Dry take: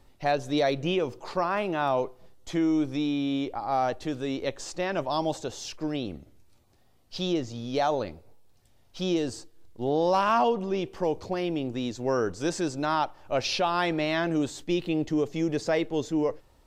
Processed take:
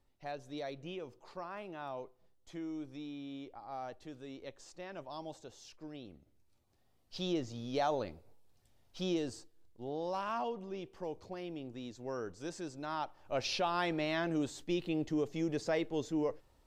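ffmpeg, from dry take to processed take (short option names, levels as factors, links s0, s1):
-af "volume=0.944,afade=t=in:st=6.15:d=1.24:silence=0.316228,afade=t=out:st=9.02:d=0.82:silence=0.446684,afade=t=in:st=12.82:d=0.64:silence=0.473151"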